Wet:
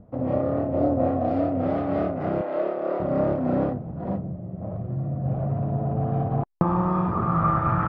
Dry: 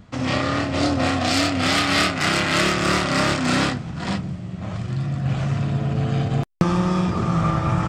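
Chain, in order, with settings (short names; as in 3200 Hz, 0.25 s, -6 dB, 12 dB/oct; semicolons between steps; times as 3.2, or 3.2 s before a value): 2.41–3 Chebyshev band-pass 460–4700 Hz, order 2; low-pass sweep 590 Hz -> 1400 Hz, 5.19–7.82; gain -4 dB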